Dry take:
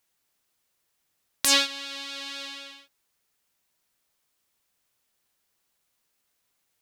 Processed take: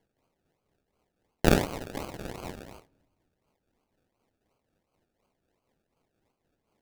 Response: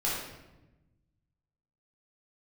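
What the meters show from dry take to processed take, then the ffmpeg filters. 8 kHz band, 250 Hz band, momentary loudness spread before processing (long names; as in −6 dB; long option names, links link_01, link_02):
−13.5 dB, +9.5 dB, 19 LU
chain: -filter_complex "[0:a]acrusher=samples=34:mix=1:aa=0.000001:lfo=1:lforange=20.4:lforate=2.8,tremolo=f=4:d=0.47,asplit=2[link_01][link_02];[1:a]atrim=start_sample=2205[link_03];[link_02][link_03]afir=irnorm=-1:irlink=0,volume=-31dB[link_04];[link_01][link_04]amix=inputs=2:normalize=0"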